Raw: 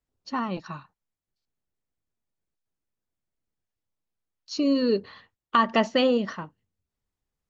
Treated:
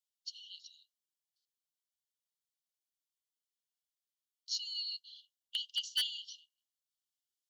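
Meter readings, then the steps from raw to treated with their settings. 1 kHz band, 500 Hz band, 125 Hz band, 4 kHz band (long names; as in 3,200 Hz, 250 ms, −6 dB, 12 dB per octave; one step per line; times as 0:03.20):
below −40 dB, below −40 dB, can't be measured, −1.0 dB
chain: linear-phase brick-wall high-pass 2,800 Hz
wave folding −24.5 dBFS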